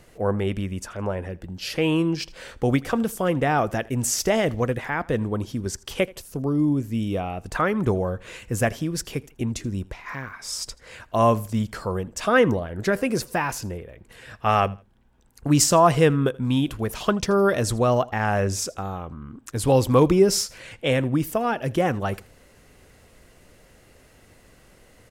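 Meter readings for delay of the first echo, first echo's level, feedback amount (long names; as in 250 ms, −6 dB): 81 ms, −23.0 dB, 27%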